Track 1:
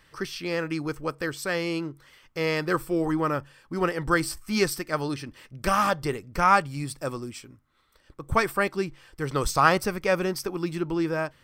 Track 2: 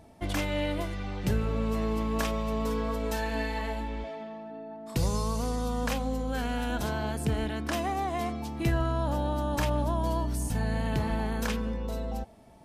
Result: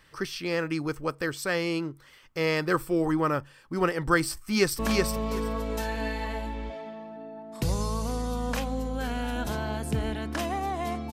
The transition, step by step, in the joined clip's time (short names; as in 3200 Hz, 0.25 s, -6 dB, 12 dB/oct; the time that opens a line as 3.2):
track 1
4.35–4.79 echo throw 0.37 s, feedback 15%, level -2.5 dB
4.79 switch to track 2 from 2.13 s